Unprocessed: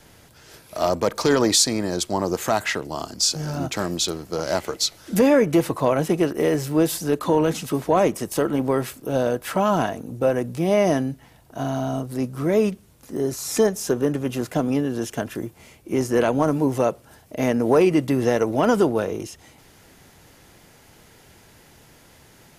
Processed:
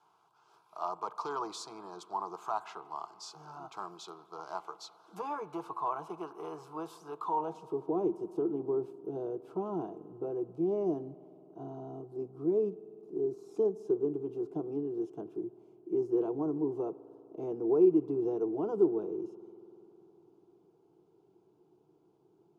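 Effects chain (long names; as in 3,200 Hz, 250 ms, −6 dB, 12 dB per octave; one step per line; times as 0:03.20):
phaser with its sweep stopped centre 370 Hz, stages 8
band-pass filter sweep 1,100 Hz → 350 Hz, 0:07.27–0:07.90
spring reverb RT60 3.7 s, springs 50 ms, chirp 50 ms, DRR 17 dB
level −4 dB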